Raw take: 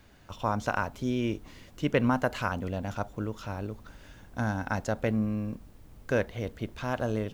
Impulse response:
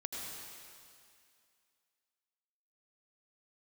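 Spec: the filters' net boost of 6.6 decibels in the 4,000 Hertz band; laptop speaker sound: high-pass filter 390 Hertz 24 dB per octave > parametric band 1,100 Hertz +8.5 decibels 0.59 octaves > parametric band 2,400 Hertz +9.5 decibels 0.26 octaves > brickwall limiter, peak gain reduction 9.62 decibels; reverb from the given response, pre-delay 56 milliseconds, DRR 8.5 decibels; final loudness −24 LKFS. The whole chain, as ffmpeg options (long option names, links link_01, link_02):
-filter_complex "[0:a]equalizer=frequency=4000:width_type=o:gain=7.5,asplit=2[link_01][link_02];[1:a]atrim=start_sample=2205,adelay=56[link_03];[link_02][link_03]afir=irnorm=-1:irlink=0,volume=-9.5dB[link_04];[link_01][link_04]amix=inputs=2:normalize=0,highpass=frequency=390:width=0.5412,highpass=frequency=390:width=1.3066,equalizer=frequency=1100:width_type=o:width=0.59:gain=8.5,equalizer=frequency=2400:width_type=o:width=0.26:gain=9.5,volume=9.5dB,alimiter=limit=-9dB:level=0:latency=1"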